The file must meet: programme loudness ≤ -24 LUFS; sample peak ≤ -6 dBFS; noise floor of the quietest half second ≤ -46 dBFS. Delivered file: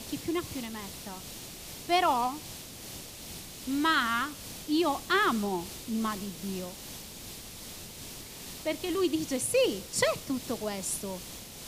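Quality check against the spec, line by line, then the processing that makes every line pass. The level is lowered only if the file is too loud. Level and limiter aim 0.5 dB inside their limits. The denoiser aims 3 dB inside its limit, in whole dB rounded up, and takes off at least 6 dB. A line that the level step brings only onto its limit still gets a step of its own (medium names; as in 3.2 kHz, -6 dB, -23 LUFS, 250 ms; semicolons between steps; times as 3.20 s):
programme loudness -31.0 LUFS: pass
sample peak -13.5 dBFS: pass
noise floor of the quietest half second -44 dBFS: fail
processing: noise reduction 6 dB, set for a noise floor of -44 dBFS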